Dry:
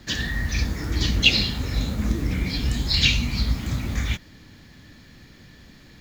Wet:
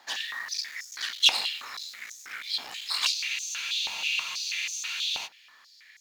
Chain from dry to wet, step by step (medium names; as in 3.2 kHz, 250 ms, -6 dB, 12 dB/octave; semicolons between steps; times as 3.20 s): one-sided clip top -24.5 dBFS; spectral freeze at 3.15 s, 2.10 s; step-sequenced high-pass 6.2 Hz 830–6400 Hz; trim -5.5 dB